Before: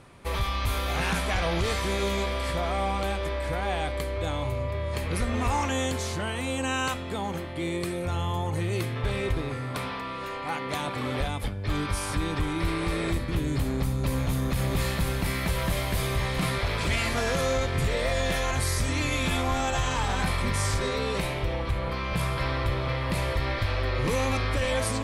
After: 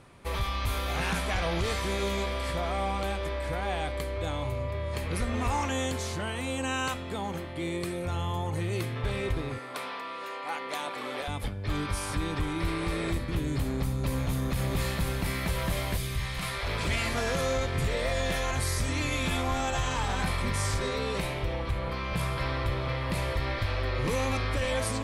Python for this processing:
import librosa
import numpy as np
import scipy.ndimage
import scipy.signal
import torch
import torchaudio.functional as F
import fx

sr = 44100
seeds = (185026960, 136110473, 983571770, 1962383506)

y = fx.highpass(x, sr, hz=370.0, slope=12, at=(9.58, 11.28))
y = fx.peak_eq(y, sr, hz=fx.line((15.96, 1000.0), (16.65, 160.0)), db=-12.0, octaves=2.2, at=(15.96, 16.65), fade=0.02)
y = F.gain(torch.from_numpy(y), -2.5).numpy()